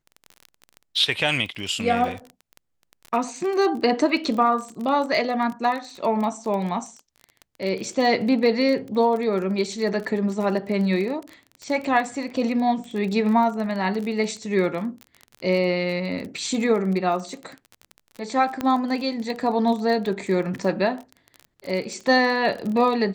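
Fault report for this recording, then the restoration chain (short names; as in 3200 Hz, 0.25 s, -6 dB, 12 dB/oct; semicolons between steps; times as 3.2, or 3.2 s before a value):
crackle 27/s -29 dBFS
18.61 pop -12 dBFS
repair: de-click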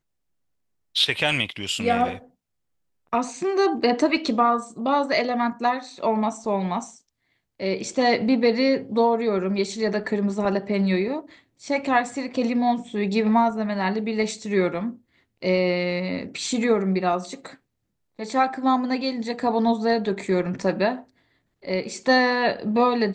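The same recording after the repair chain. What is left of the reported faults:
none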